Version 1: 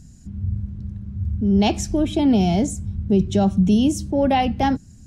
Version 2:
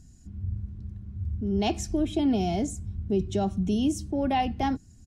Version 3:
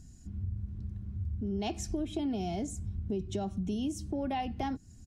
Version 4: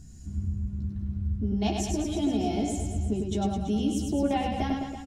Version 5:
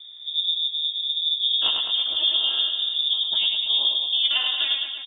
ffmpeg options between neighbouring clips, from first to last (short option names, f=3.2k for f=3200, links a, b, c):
-af "aecho=1:1:2.8:0.34,volume=-7.5dB"
-af "acompressor=threshold=-33dB:ratio=3"
-filter_complex "[0:a]asplit=2[a][b];[b]adelay=14,volume=-4dB[c];[a][c]amix=inputs=2:normalize=0,aecho=1:1:100|210|331|464.1|610.5:0.631|0.398|0.251|0.158|0.1,volume=3dB"
-af "aeval=exprs='val(0)*sin(2*PI*140*n/s)':c=same,lowpass=f=3.1k:t=q:w=0.5098,lowpass=f=3.1k:t=q:w=0.6013,lowpass=f=3.1k:t=q:w=0.9,lowpass=f=3.1k:t=q:w=2.563,afreqshift=-3700,volume=7.5dB"